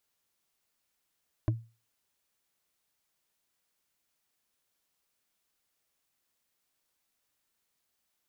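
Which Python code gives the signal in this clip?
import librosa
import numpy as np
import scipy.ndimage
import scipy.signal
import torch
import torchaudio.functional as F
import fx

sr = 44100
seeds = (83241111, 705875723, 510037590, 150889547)

y = fx.strike_wood(sr, length_s=0.45, level_db=-21.0, body='bar', hz=114.0, decay_s=0.32, tilt_db=5.0, modes=5)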